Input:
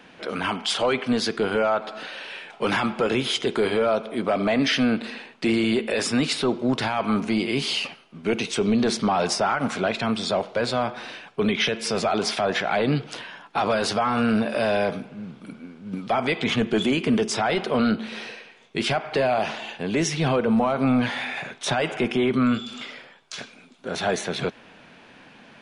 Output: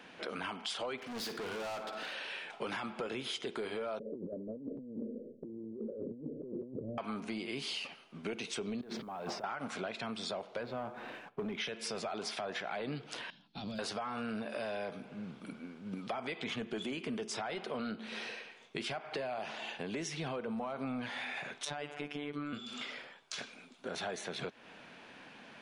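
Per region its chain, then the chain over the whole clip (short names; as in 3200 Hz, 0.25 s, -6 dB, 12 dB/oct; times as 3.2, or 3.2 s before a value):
0.97–2.14 hard clip -30.5 dBFS + flutter echo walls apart 9.4 m, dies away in 0.28 s
3.99–6.98 steep low-pass 570 Hz 96 dB/oct + negative-ratio compressor -34 dBFS
8.81–9.44 tape spacing loss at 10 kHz 28 dB + negative-ratio compressor -33 dBFS + modulation noise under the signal 35 dB
10.63–11.58 tape spacing loss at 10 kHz 42 dB + sample leveller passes 1
13.3–13.79 EQ curve 230 Hz 0 dB, 430 Hz -19 dB, 710 Hz -19 dB, 1100 Hz -25 dB, 2000 Hz -21 dB, 4200 Hz -2 dB, 7600 Hz -22 dB + overloaded stage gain 25 dB
21.65–22.53 robotiser 146 Hz + high shelf 8500 Hz -6.5 dB
whole clip: low shelf 190 Hz -6.5 dB; compressor 4:1, threshold -34 dBFS; gain -4 dB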